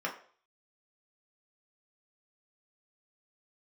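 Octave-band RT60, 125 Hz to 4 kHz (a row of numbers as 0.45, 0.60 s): 0.35, 0.40, 0.50, 0.50, 0.45, 0.45 s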